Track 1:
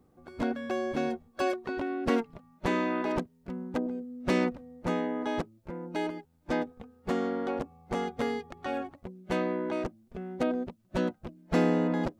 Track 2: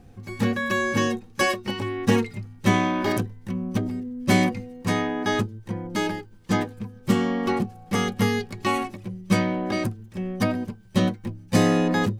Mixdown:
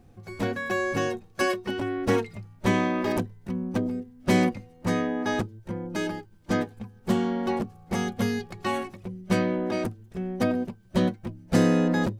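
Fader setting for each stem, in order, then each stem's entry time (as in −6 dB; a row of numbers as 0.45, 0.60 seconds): 0.0, −6.0 decibels; 0.00, 0.00 seconds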